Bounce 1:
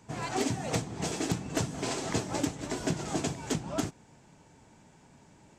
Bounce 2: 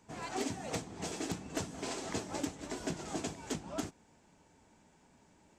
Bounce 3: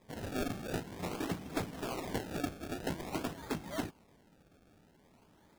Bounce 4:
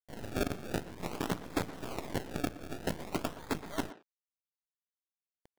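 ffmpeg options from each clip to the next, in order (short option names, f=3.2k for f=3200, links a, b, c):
-af "equalizer=f=130:w=3.4:g=-10.5,volume=-6dB"
-af "acrusher=samples=30:mix=1:aa=0.000001:lfo=1:lforange=30:lforate=0.49,volume=1dB"
-filter_complex "[0:a]acrusher=bits=6:dc=4:mix=0:aa=0.000001,asplit=2[a][b];[b]adelay=120,highpass=300,lowpass=3.4k,asoftclip=type=hard:threshold=-31.5dB,volume=-11dB[c];[a][c]amix=inputs=2:normalize=0,volume=2dB"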